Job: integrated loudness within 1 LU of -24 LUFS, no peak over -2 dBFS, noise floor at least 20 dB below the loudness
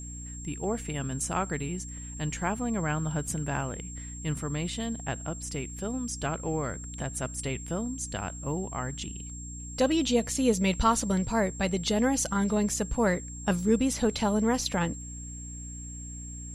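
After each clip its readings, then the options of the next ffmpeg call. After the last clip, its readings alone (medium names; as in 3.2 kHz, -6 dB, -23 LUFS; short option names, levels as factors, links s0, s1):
hum 60 Hz; highest harmonic 300 Hz; hum level -39 dBFS; steady tone 7.5 kHz; tone level -42 dBFS; loudness -30.0 LUFS; peak level -10.5 dBFS; loudness target -24.0 LUFS
-> -af "bandreject=f=60:t=h:w=4,bandreject=f=120:t=h:w=4,bandreject=f=180:t=h:w=4,bandreject=f=240:t=h:w=4,bandreject=f=300:t=h:w=4"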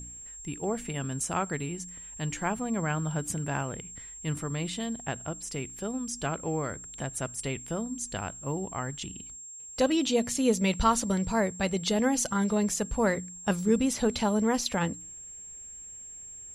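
hum not found; steady tone 7.5 kHz; tone level -42 dBFS
-> -af "bandreject=f=7500:w=30"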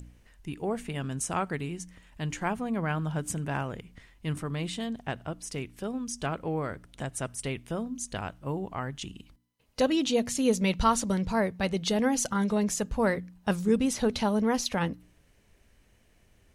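steady tone not found; loudness -30.0 LUFS; peak level -11.0 dBFS; loudness target -24.0 LUFS
-> -af "volume=2"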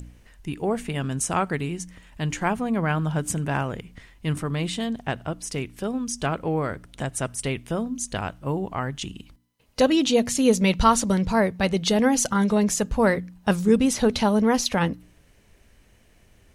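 loudness -24.0 LUFS; peak level -5.0 dBFS; noise floor -58 dBFS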